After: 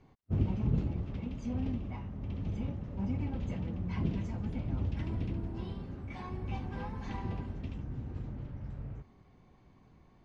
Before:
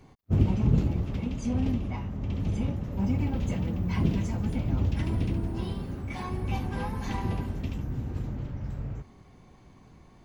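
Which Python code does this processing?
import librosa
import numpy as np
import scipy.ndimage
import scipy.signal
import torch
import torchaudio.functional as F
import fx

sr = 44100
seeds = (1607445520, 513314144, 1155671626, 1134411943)

y = fx.air_absorb(x, sr, metres=110.0)
y = y * 10.0 ** (-7.0 / 20.0)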